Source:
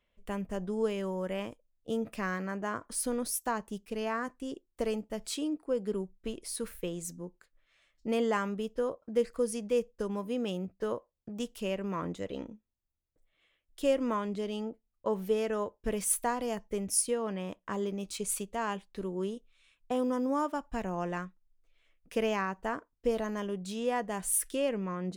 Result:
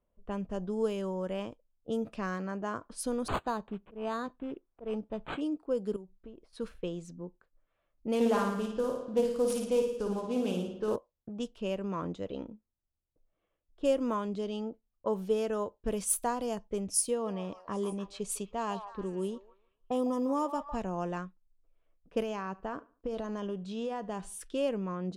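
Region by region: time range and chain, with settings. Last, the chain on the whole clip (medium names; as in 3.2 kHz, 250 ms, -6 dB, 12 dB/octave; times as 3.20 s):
3.28–5.41 s: treble shelf 4.1 kHz +4.5 dB + slow attack 138 ms + decimation joined by straight lines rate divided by 8×
5.96–6.53 s: compression 2:1, threshold -52 dBFS + tape noise reduction on one side only encoder only
8.15–10.96 s: CVSD coder 64 kbps + flutter echo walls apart 9.6 m, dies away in 0.8 s + loudspeaker Doppler distortion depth 0.19 ms
16.86–20.81 s: band-stop 1.5 kHz, Q 8.2 + repeats whose band climbs or falls 154 ms, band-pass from 850 Hz, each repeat 0.7 oct, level -7.5 dB + tape noise reduction on one side only decoder only
22.21–24.41 s: compression 10:1, threshold -30 dBFS + feedback delay 73 ms, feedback 34%, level -21 dB
whole clip: level-controlled noise filter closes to 1.1 kHz, open at -27.5 dBFS; peaking EQ 2 kHz -9 dB 0.55 oct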